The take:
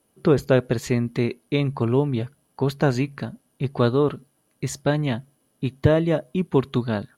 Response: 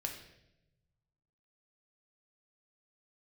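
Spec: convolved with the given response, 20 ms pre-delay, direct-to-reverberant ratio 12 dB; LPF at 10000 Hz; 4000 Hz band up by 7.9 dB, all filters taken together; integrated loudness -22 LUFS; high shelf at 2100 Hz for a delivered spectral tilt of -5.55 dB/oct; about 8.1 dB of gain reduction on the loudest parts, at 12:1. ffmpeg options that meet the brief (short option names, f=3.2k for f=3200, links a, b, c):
-filter_complex "[0:a]lowpass=10k,highshelf=f=2.1k:g=5,equalizer=f=4k:t=o:g=5,acompressor=threshold=-19dB:ratio=12,asplit=2[a][b];[1:a]atrim=start_sample=2205,adelay=20[c];[b][c]afir=irnorm=-1:irlink=0,volume=-12dB[d];[a][d]amix=inputs=2:normalize=0,volume=4.5dB"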